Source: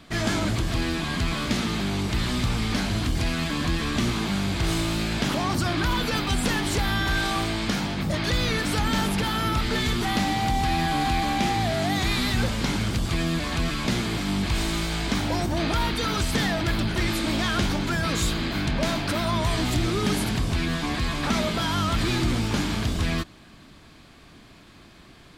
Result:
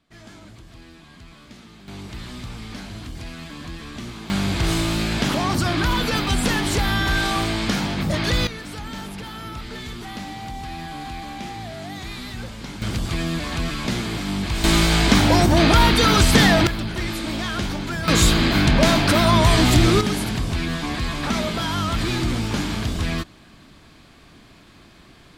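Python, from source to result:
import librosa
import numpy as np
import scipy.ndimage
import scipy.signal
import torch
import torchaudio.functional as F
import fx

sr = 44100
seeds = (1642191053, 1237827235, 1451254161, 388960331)

y = fx.gain(x, sr, db=fx.steps((0.0, -19.0), (1.88, -9.5), (4.3, 3.5), (8.47, -9.0), (12.82, 0.5), (14.64, 10.0), (16.67, -1.5), (18.08, 9.0), (20.01, 1.0)))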